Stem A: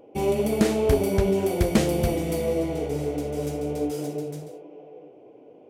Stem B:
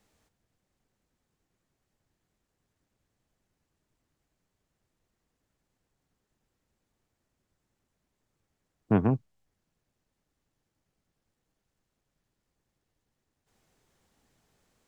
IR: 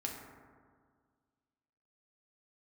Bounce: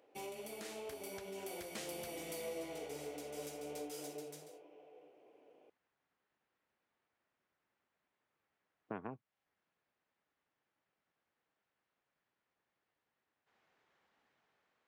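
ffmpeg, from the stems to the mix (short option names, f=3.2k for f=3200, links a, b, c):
-filter_complex "[0:a]alimiter=limit=-19dB:level=0:latency=1:release=274,volume=-9dB[a];[1:a]lowpass=2.2k,acompressor=threshold=-35dB:ratio=4,volume=1dB[b];[a][b]amix=inputs=2:normalize=0,highpass=f=1.4k:p=1,dynaudnorm=f=930:g=3:m=3.5dB"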